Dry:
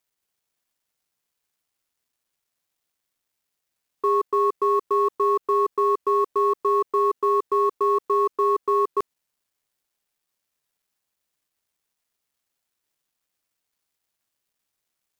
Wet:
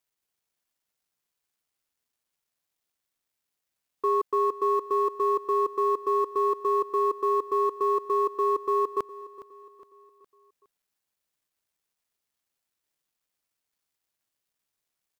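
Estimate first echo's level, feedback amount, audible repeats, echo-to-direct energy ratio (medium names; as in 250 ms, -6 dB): -17.0 dB, 45%, 3, -16.0 dB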